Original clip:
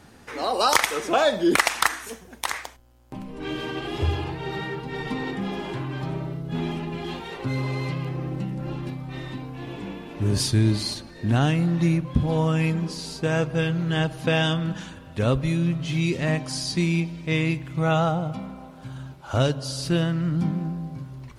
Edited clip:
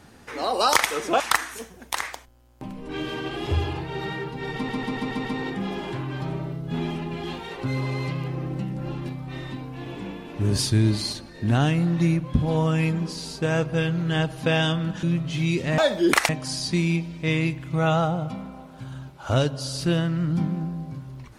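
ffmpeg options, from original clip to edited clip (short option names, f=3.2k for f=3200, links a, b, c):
-filter_complex "[0:a]asplit=10[a][b][c][d][e][f][g][h][i][j];[a]atrim=end=1.202[k];[b]atrim=start=1.708:end=5.202[l];[c]atrim=start=5.058:end=5.202[m];[d]atrim=start=5.058:end=5.202[n];[e]atrim=start=5.058:end=5.202[o];[f]atrim=start=5.058:end=5.202[p];[g]atrim=start=5.058:end=14.842[q];[h]atrim=start=15.578:end=16.332[r];[i]atrim=start=1.198:end=1.712[s];[j]atrim=start=16.328[t];[k][l]acrossfade=d=0.004:c1=hsin:c2=hsin[u];[u][m]acrossfade=d=0.004:c1=hsin:c2=hsin[v];[v][n]acrossfade=d=0.004:c1=hsin:c2=hsin[w];[w][o]acrossfade=d=0.004:c1=hsin:c2=hsin[x];[x][p]acrossfade=d=0.004:c1=hsin:c2=hsin[y];[y][q]acrossfade=d=0.004:c1=hsin:c2=hsin[z];[z][r]acrossfade=d=0.004:c1=hsin:c2=hsin[aa];[aa][s]acrossfade=d=0.004:c1=hsin:c2=hsin[ab];[ab][t]acrossfade=d=0.004:c1=hsin:c2=hsin"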